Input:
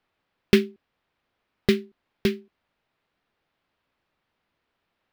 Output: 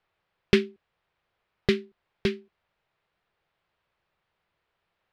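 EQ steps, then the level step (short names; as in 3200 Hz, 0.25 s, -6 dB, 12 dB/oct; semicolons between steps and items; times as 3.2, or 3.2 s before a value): air absorption 71 m; bell 260 Hz -15 dB 0.39 oct; 0.0 dB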